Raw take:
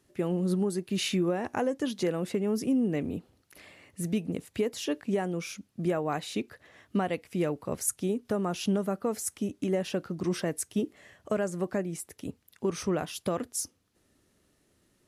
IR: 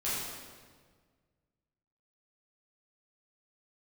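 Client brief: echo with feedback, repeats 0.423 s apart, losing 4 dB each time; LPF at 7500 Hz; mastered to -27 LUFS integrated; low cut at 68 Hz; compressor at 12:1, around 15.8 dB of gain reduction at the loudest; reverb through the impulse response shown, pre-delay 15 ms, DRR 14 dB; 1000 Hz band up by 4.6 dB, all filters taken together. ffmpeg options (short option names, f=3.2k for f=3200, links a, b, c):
-filter_complex "[0:a]highpass=68,lowpass=7.5k,equalizer=f=1k:t=o:g=6.5,acompressor=threshold=-39dB:ratio=12,aecho=1:1:423|846|1269|1692|2115|2538|2961|3384|3807:0.631|0.398|0.25|0.158|0.0994|0.0626|0.0394|0.0249|0.0157,asplit=2[a][b];[1:a]atrim=start_sample=2205,adelay=15[c];[b][c]afir=irnorm=-1:irlink=0,volume=-20.5dB[d];[a][d]amix=inputs=2:normalize=0,volume=15.5dB"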